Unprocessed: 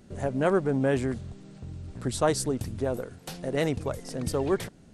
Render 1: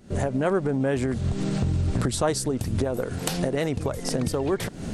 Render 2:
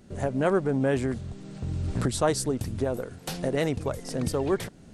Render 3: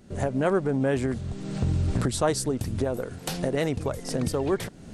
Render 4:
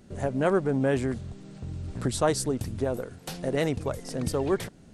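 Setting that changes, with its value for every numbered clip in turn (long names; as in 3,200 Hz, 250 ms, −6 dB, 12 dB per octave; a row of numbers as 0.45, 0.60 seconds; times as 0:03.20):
camcorder AGC, rising by: 79, 13, 32, 5.2 dB per second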